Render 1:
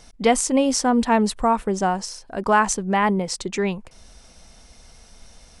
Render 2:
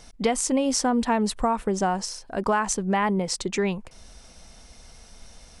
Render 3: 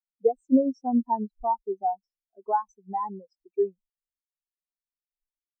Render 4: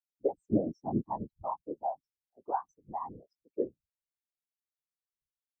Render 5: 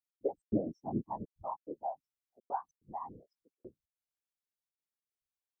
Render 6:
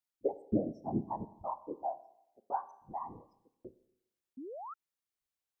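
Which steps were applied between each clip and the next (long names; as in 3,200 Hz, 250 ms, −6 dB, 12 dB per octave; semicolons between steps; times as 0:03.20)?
downward compressor 6 to 1, threshold −19 dBFS, peak gain reduction 8 dB
parametric band 140 Hz −13 dB 0.8 octaves; every bin expanded away from the loudest bin 4 to 1; level −2.5 dB
random phases in short frames; level −8.5 dB
gate pattern "x.xx.xxxxxx" 144 BPM −60 dB; level −4 dB
four-comb reverb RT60 0.8 s, combs from 27 ms, DRR 14 dB; sound drawn into the spectrogram rise, 0:04.37–0:04.74, 240–1,400 Hz −45 dBFS; level +1 dB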